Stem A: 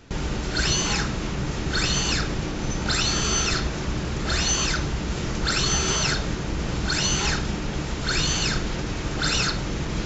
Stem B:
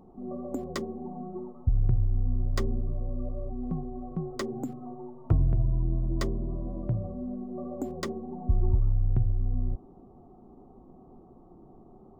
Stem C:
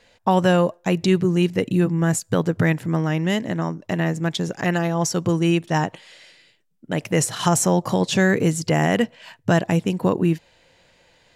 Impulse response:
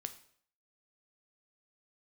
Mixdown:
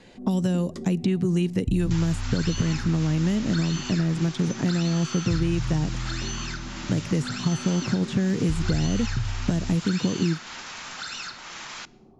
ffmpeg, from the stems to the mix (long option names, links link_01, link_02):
-filter_complex "[0:a]highpass=frequency=890:width=0.5412,highpass=frequency=890:width=1.3066,adelay=1800,volume=2.5dB,asplit=2[link_01][link_02];[link_02]volume=-9dB[link_03];[1:a]volume=-7.5dB,asplit=2[link_04][link_05];[link_05]volume=-3.5dB[link_06];[2:a]acrossover=split=650|3700[link_07][link_08][link_09];[link_07]acompressor=threshold=-24dB:ratio=4[link_10];[link_08]acompressor=threshold=-30dB:ratio=4[link_11];[link_09]acompressor=threshold=-40dB:ratio=4[link_12];[link_10][link_11][link_12]amix=inputs=3:normalize=0,volume=2dB[link_13];[3:a]atrim=start_sample=2205[link_14];[link_03][link_06]amix=inputs=2:normalize=0[link_15];[link_15][link_14]afir=irnorm=-1:irlink=0[link_16];[link_01][link_04][link_13][link_16]amix=inputs=4:normalize=0,lowpass=frequency=11000:width=0.5412,lowpass=frequency=11000:width=1.3066,equalizer=frequency=180:width_type=o:width=2.4:gain=5,acrossover=split=370|3400[link_17][link_18][link_19];[link_17]acompressor=threshold=-20dB:ratio=4[link_20];[link_18]acompressor=threshold=-39dB:ratio=4[link_21];[link_19]acompressor=threshold=-42dB:ratio=4[link_22];[link_20][link_21][link_22]amix=inputs=3:normalize=0"